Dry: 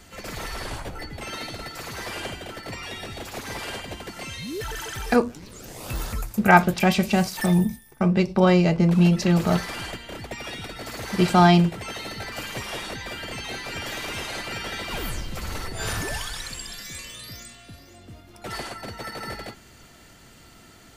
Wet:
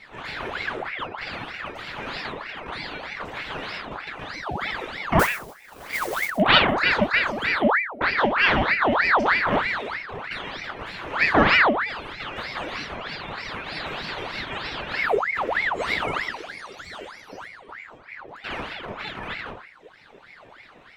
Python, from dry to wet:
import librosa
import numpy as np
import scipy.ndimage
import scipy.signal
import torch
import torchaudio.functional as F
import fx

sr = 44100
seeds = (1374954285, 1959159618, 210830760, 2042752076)

p1 = fx.rattle_buzz(x, sr, strikes_db=-24.0, level_db=-19.0)
p2 = fx.dereverb_blind(p1, sr, rt60_s=1.4)
p3 = fx.rider(p2, sr, range_db=3, speed_s=0.5)
p4 = p2 + (p3 * librosa.db_to_amplitude(3.0))
p5 = scipy.signal.savgol_filter(p4, 25, 4, mode='constant')
p6 = fx.room_shoebox(p5, sr, seeds[0], volume_m3=390.0, walls='furnished', distance_m=2.4)
p7 = fx.mod_noise(p6, sr, seeds[1], snr_db=11, at=(5.19, 6.3))
p8 = p7 + fx.echo_single(p7, sr, ms=119, db=-14.0, dry=0)
p9 = fx.ring_lfo(p8, sr, carrier_hz=1300.0, swing_pct=70, hz=3.2)
y = p9 * librosa.db_to_amplitude(-8.0)